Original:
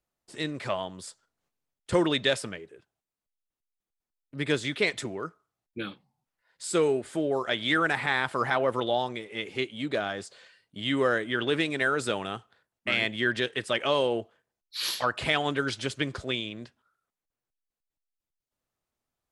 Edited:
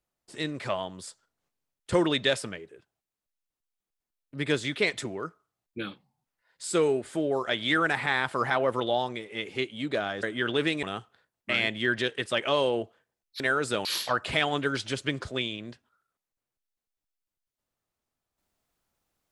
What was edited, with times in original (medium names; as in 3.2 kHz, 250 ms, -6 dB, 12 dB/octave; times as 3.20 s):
10.23–11.16 s: delete
11.76–12.21 s: move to 14.78 s